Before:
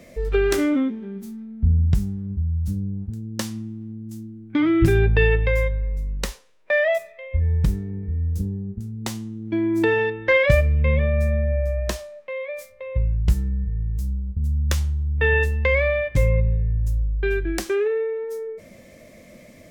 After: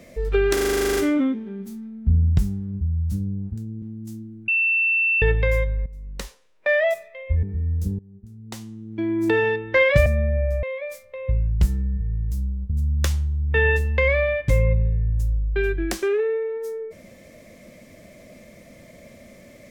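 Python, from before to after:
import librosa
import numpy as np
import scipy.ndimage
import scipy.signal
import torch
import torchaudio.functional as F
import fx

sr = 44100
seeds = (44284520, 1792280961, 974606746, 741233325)

y = fx.edit(x, sr, fx.stutter(start_s=0.53, slice_s=0.04, count=12),
    fx.cut(start_s=3.38, length_s=0.48),
    fx.bleep(start_s=4.52, length_s=0.74, hz=2680.0, db=-17.0),
    fx.fade_in_from(start_s=5.9, length_s=0.85, floor_db=-15.0),
    fx.cut(start_s=7.47, length_s=0.5),
    fx.fade_in_from(start_s=8.53, length_s=1.42, floor_db=-21.5),
    fx.cut(start_s=10.6, length_s=0.61),
    fx.cut(start_s=11.78, length_s=0.52), tone=tone)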